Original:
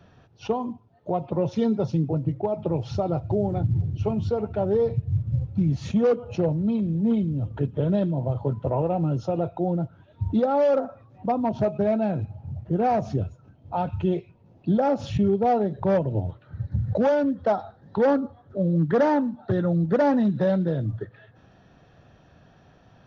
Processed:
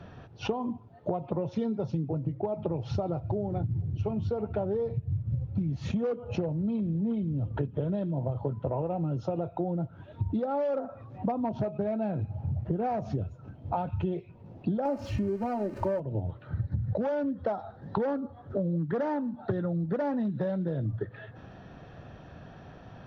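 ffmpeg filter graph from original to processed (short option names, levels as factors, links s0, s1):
-filter_complex "[0:a]asettb=1/sr,asplit=3[s0][s1][s2];[s0]atrim=end=14.854[s3];[s1]atrim=start=14.85:end=16,asetpts=PTS-STARTPTS,afade=t=in:d=0.004:c=qsin,afade=t=out:st=1.146:d=0.004:c=qsin,aeval=exprs='val(0)+0.5*0.0133*sgn(val(0))':c=same,equalizer=f=3500:w=6.8:g=-13,aecho=1:1:3.3:0.96,atrim=end_sample=50715[s4];[s2]atrim=start=15.996[s5];[s3][s4]acrossfade=d=0.004:c1=hsin:c2=qsin[s6];[s6][s5]acrossfade=d=0.004:c1=qsin:c2=hsin,lowpass=f=2900:p=1,acompressor=threshold=0.02:ratio=12,volume=2.24"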